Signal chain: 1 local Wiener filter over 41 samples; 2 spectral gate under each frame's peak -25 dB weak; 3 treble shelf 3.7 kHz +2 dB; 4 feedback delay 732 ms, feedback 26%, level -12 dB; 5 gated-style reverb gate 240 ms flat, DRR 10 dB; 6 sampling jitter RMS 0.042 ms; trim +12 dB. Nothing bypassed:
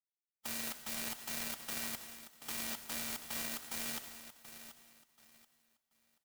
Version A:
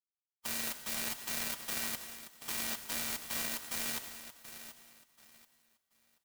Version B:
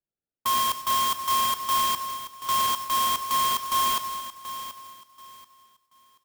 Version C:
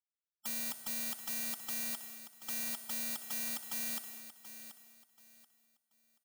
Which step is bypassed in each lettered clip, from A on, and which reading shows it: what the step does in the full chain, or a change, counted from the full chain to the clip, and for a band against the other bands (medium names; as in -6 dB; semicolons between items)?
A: 1, 250 Hz band -2.5 dB; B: 2, 1 kHz band +20.5 dB; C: 6, 8 kHz band +4.0 dB